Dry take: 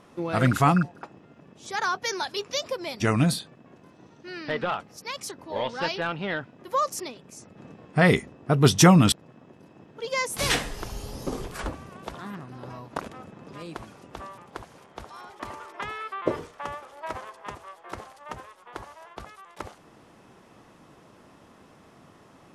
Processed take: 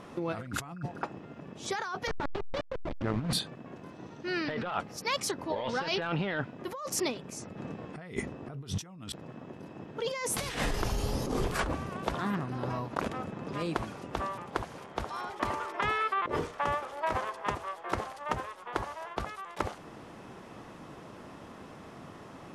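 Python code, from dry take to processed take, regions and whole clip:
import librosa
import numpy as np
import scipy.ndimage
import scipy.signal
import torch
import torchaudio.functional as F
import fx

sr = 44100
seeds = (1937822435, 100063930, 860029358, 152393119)

y = fx.chain(x, sr, fx.delta_hold(step_db=-22.5),
    fx.over_compress(threshold_db=-27.0, ratio=-0.5),
    fx.spacing_loss(db_at_10k=27), at=(2.07, 3.33))
y = fx.high_shelf(y, sr, hz=4900.0, db=-5.5)
y = fx.over_compress(y, sr, threshold_db=-34.0, ratio=-1.0)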